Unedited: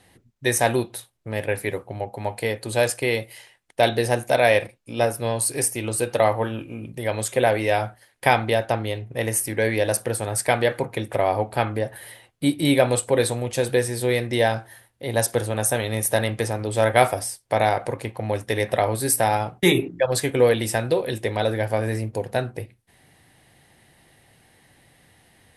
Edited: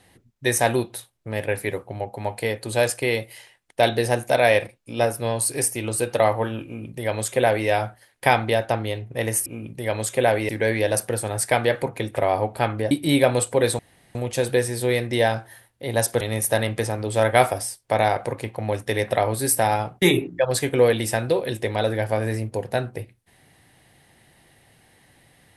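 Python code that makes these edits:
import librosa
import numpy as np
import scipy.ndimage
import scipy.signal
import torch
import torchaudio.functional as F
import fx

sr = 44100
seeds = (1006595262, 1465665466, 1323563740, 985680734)

y = fx.edit(x, sr, fx.duplicate(start_s=6.65, length_s=1.03, to_s=9.46),
    fx.cut(start_s=11.88, length_s=0.59),
    fx.insert_room_tone(at_s=13.35, length_s=0.36),
    fx.cut(start_s=15.41, length_s=0.41), tone=tone)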